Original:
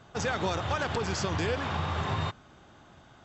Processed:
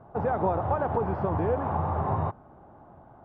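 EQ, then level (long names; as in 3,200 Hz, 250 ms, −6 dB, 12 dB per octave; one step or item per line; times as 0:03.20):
low-pass with resonance 830 Hz, resonance Q 1.9
high-frequency loss of the air 200 metres
+2.5 dB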